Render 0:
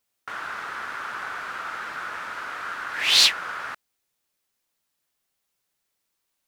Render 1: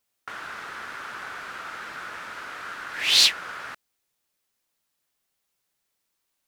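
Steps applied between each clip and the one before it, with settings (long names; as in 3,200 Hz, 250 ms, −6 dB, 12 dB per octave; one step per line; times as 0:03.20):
dynamic equaliser 1,100 Hz, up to −5 dB, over −38 dBFS, Q 0.79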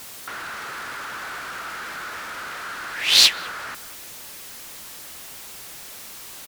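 converter with a step at zero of −30.5 dBFS
far-end echo of a speakerphone 190 ms, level −16 dB
harmonic generator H 7 −23 dB, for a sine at −4.5 dBFS
level +3.5 dB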